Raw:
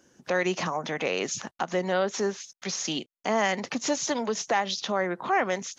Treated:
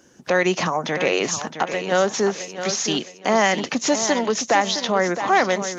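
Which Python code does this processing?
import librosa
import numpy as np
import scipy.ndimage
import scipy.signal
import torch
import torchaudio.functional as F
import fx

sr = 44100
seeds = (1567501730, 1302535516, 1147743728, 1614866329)

y = fx.hpss(x, sr, part='harmonic', gain_db=-9, at=(1.51, 1.92))
y = fx.echo_feedback(y, sr, ms=664, feedback_pct=35, wet_db=-10)
y = y * 10.0 ** (7.0 / 20.0)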